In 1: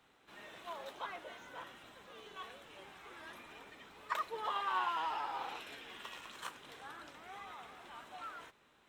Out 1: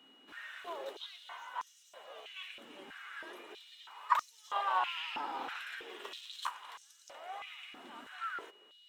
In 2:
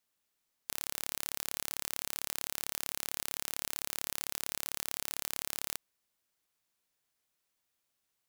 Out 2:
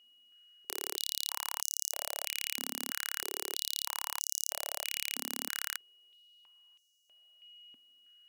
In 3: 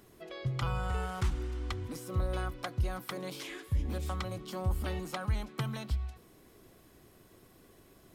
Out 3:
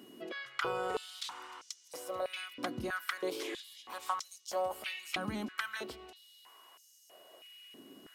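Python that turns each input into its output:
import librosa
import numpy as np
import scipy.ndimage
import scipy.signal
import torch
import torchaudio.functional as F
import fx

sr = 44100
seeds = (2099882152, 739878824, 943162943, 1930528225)

y = x + 10.0 ** (-61.0 / 20.0) * np.sin(2.0 * np.pi * 2900.0 * np.arange(len(x)) / sr)
y = fx.filter_held_highpass(y, sr, hz=3.1, low_hz=250.0, high_hz=6000.0)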